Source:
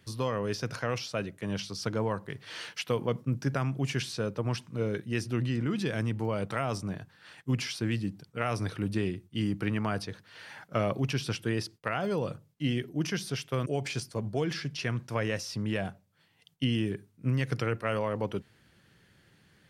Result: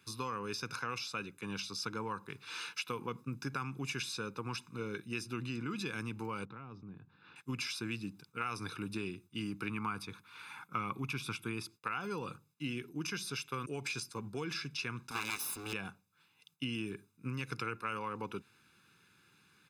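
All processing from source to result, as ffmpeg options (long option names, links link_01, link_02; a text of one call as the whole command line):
ffmpeg -i in.wav -filter_complex "[0:a]asettb=1/sr,asplit=3[link_01][link_02][link_03];[link_01]atrim=end=6.454[link_04];[link_02]atrim=start=6.45:end=7.36,asetpts=PTS-STARTPTS,afade=type=in:duration=0.004:curve=qsin,afade=type=out:start_time=0.906:duration=0.004:curve=qsin,lowpass=frequency=4200:width=0.5412,lowpass=frequency=4200:width=1.3066,tiltshelf=frequency=670:gain=9,acompressor=threshold=-49dB:ratio=2:attack=3.2:release=140:knee=1:detection=peak[link_05];[link_03]atrim=start=7.356[link_06];[link_04][link_05]acrossfade=duration=0.004:curve1=hsin:curve2=qsin[link_07];[link_07][link_06]acrossfade=duration=0.004:curve1=qsin:curve2=hsin,asettb=1/sr,asplit=3[link_08][link_09][link_10];[link_08]atrim=end=9.694[link_11];[link_09]atrim=start=9.69:end=11.72,asetpts=PTS-STARTPTS,afade=type=in:duration=0.004:curve=qsin,afade=type=out:start_time=2.026:duration=0.004:curve=qsin,equalizer=frequency=5100:width_type=o:width=0.77:gain=-6,aecho=1:1:0.9:0.39,atrim=end_sample=89523[link_12];[link_10]atrim=start=11.716[link_13];[link_11][link_12]acrossfade=duration=0.004:curve1=hsin:curve2=qsin[link_14];[link_14][link_13]acrossfade=duration=0.004:curve1=qsin:curve2=hsin,asettb=1/sr,asplit=3[link_15][link_16][link_17];[link_15]atrim=end=15.114[link_18];[link_16]atrim=start=15.11:end=15.73,asetpts=PTS-STARTPTS,afade=type=in:duration=0.004:curve=qsin,afade=type=out:start_time=0.616:duration=0.004:curve=qsin,bandreject=frequency=50:width_type=h:width=6,bandreject=frequency=100:width_type=h:width=6,aeval=exprs='abs(val(0))':channel_layout=same,highshelf=frequency=3000:gain=10.5[link_19];[link_17]atrim=start=15.726[link_20];[link_18][link_19]acrossfade=duration=0.004:curve1=hsin:curve2=qsin[link_21];[link_21][link_20]acrossfade=duration=0.004:curve1=qsin:curve2=hsin,highpass=frequency=530:poles=1,aecho=1:1:0.8:0.94,acompressor=threshold=-34dB:ratio=2,volume=-2.5dB" out.wav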